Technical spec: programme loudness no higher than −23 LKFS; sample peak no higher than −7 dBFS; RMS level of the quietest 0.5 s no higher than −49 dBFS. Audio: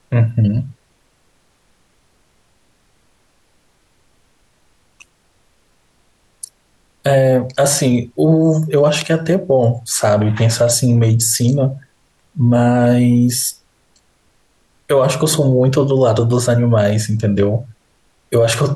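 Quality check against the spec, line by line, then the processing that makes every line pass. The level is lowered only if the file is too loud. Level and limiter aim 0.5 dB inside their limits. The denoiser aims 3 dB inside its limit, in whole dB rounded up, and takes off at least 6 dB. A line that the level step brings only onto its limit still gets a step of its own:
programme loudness −14.5 LKFS: out of spec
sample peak −4.5 dBFS: out of spec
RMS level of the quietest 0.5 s −58 dBFS: in spec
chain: level −9 dB

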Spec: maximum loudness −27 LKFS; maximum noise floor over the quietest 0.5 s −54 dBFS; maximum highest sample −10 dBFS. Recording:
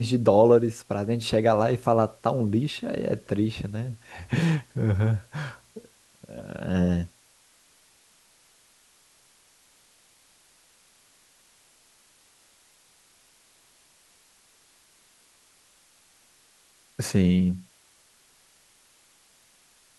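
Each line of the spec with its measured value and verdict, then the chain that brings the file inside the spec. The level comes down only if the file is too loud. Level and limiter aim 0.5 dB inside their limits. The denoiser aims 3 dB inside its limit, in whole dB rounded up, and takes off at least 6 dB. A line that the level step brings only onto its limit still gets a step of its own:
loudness −25.0 LKFS: out of spec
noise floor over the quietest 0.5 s −60 dBFS: in spec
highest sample −5.5 dBFS: out of spec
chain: level −2.5 dB
brickwall limiter −10.5 dBFS

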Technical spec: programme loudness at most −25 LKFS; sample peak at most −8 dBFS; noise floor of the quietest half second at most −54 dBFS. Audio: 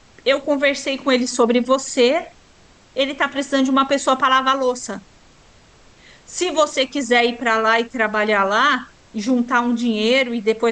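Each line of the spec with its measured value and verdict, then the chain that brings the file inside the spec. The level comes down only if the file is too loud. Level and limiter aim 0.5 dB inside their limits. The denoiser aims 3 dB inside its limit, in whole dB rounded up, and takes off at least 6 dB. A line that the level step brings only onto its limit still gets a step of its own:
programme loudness −18.0 LKFS: out of spec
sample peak −5.5 dBFS: out of spec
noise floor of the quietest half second −50 dBFS: out of spec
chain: level −7.5 dB

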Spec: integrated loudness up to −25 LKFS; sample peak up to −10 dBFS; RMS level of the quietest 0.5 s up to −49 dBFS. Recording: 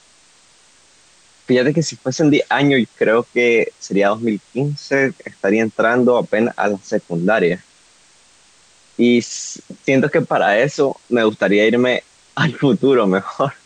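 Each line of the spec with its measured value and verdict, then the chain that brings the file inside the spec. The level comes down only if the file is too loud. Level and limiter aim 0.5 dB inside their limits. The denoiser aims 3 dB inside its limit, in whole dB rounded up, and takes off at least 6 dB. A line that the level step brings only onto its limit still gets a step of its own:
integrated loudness −17.0 LKFS: out of spec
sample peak −5.0 dBFS: out of spec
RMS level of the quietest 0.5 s −51 dBFS: in spec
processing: level −8.5 dB

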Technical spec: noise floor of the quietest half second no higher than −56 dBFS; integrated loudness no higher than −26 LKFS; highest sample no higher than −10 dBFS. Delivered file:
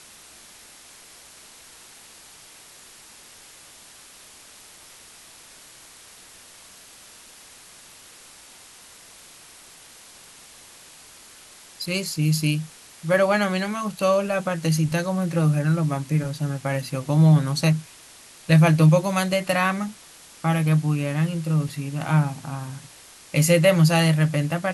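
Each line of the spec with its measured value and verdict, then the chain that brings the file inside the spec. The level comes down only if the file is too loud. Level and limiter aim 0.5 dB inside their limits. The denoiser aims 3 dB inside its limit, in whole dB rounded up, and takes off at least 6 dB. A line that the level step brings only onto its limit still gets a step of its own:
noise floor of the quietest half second −47 dBFS: out of spec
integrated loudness −21.5 LKFS: out of spec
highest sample −6.0 dBFS: out of spec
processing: broadband denoise 7 dB, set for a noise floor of −47 dBFS
level −5 dB

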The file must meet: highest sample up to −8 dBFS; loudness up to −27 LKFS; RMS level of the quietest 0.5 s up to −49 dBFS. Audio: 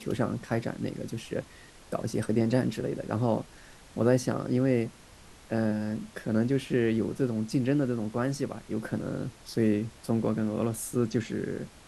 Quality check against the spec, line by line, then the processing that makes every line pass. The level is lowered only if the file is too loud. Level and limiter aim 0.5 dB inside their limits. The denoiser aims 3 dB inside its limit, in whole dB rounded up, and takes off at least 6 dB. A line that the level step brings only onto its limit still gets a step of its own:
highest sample −10.5 dBFS: in spec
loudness −30.0 LKFS: in spec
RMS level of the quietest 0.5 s −52 dBFS: in spec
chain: no processing needed

